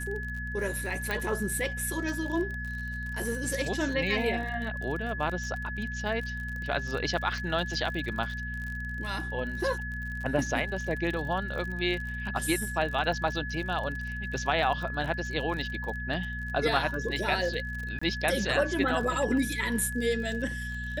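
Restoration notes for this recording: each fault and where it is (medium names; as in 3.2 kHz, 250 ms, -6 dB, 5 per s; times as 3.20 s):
crackle 43 per s -35 dBFS
hum 60 Hz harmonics 4 -37 dBFS
whine 1.7 kHz -36 dBFS
1.11 s: pop
17.99–18.02 s: dropout 25 ms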